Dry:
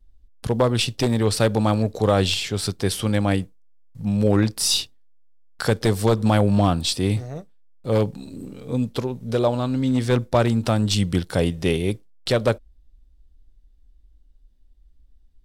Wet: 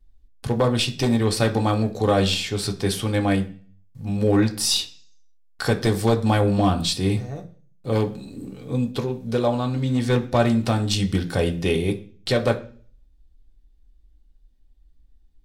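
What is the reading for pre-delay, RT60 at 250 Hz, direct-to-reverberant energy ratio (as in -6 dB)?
3 ms, 0.60 s, 2.0 dB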